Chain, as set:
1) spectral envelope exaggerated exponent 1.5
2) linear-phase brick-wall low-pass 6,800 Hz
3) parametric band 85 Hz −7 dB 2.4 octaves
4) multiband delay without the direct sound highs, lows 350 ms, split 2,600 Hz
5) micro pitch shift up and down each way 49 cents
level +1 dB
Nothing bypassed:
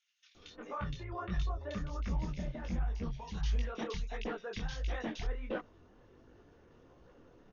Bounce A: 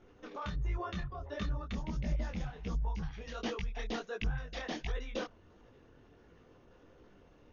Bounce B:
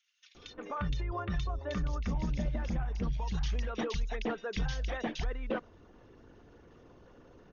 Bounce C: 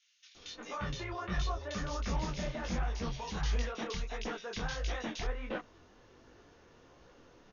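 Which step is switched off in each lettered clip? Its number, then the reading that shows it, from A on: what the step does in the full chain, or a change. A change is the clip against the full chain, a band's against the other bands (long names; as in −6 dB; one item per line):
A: 4, 4 kHz band +2.0 dB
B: 5, change in momentary loudness spread −2 LU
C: 1, 4 kHz band +4.5 dB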